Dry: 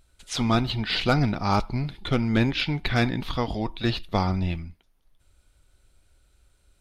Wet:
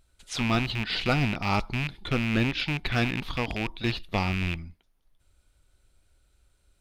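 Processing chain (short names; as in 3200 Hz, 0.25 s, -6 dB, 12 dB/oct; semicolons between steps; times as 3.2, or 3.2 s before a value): rattling part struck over -27 dBFS, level -16 dBFS; gain -3.5 dB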